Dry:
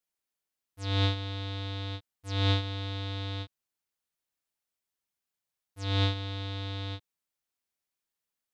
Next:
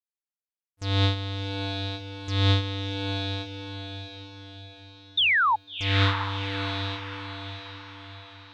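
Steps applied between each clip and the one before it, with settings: painted sound fall, 5.17–5.56, 820–3800 Hz -25 dBFS; gate with hold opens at -33 dBFS; diffused feedback echo 0.678 s, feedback 49%, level -7.5 dB; gain +4 dB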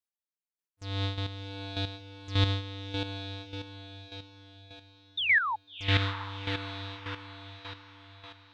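chopper 1.7 Hz, depth 65%, duty 15%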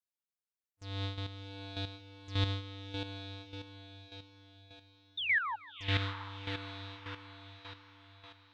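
narrowing echo 0.157 s, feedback 66%, band-pass 1400 Hz, level -20.5 dB; gain -6 dB

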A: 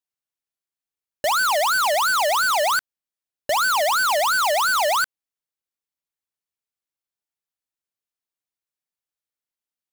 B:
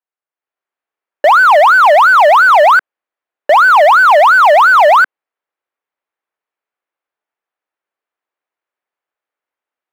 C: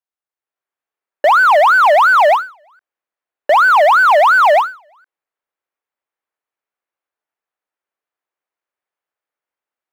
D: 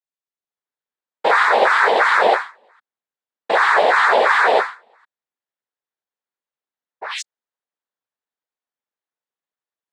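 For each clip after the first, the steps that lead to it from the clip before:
three-band isolator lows -23 dB, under 330 Hz, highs -24 dB, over 2300 Hz; AGC gain up to 10 dB; gain +5 dB
ending taper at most 170 dB/s; gain -3 dB
painted sound rise, 7.01–7.22, 630–5300 Hz -23 dBFS; noise vocoder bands 6; gain -5 dB

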